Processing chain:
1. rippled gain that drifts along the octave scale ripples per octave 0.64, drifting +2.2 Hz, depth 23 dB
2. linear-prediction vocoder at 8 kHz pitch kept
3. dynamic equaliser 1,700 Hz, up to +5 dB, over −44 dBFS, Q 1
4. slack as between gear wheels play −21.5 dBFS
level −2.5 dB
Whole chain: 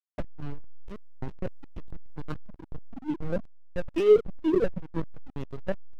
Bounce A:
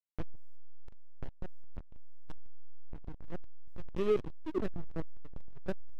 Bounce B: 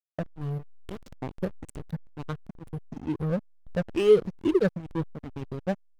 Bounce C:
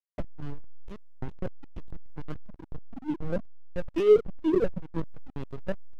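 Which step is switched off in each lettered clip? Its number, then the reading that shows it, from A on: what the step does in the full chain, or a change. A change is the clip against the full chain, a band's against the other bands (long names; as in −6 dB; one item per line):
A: 1, change in crest factor −5.0 dB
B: 2, 125 Hz band +3.5 dB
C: 3, change in momentary loudness spread −2 LU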